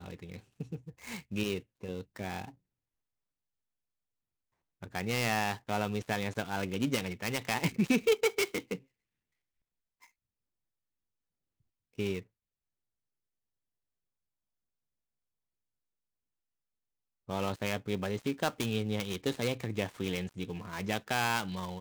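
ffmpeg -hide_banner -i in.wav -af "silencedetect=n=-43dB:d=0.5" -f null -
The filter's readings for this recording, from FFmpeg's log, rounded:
silence_start: 2.49
silence_end: 4.82 | silence_duration: 2.33
silence_start: 8.77
silence_end: 11.99 | silence_duration: 3.21
silence_start: 12.21
silence_end: 17.29 | silence_duration: 5.08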